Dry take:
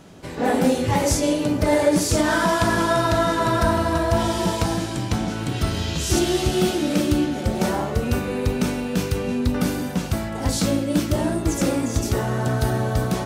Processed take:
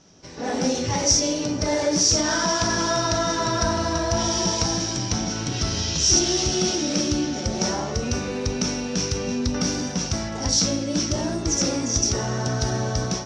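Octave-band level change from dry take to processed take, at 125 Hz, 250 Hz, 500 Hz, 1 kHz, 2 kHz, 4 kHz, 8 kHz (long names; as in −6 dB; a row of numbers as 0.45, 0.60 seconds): −3.5, −4.0, −4.0, −3.5, −3.0, +6.0, +8.0 decibels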